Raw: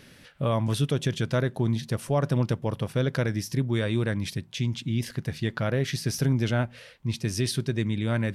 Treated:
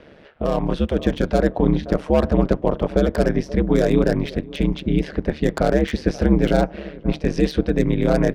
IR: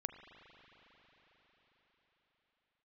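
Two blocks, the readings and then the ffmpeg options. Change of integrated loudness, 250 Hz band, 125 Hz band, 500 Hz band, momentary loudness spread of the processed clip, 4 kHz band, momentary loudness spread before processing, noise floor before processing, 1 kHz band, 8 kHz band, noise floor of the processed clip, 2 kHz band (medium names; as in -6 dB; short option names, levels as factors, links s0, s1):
+7.0 dB, +9.5 dB, +1.5 dB, +10.5 dB, 6 LU, 0.0 dB, 5 LU, -52 dBFS, +8.0 dB, no reading, -45 dBFS, +3.5 dB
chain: -filter_complex "[0:a]lowpass=3100,equalizer=f=540:w=0.66:g=12.5,asplit=2[s0][s1];[s1]adelay=525,lowpass=f=980:p=1,volume=0.0891,asplit=2[s2][s3];[s3]adelay=525,lowpass=f=980:p=1,volume=0.43,asplit=2[s4][s5];[s5]adelay=525,lowpass=f=980:p=1,volume=0.43[s6];[s0][s2][s4][s6]amix=inputs=4:normalize=0,acrossover=split=230|1100[s7][s8][s9];[s8]alimiter=limit=0.141:level=0:latency=1[s10];[s9]aeval=exprs='0.0316*(abs(mod(val(0)/0.0316+3,4)-2)-1)':c=same[s11];[s7][s10][s11]amix=inputs=3:normalize=0,dynaudnorm=f=150:g=13:m=1.68,aeval=exprs='val(0)*sin(2*PI*73*n/s)':c=same,volume=1.41"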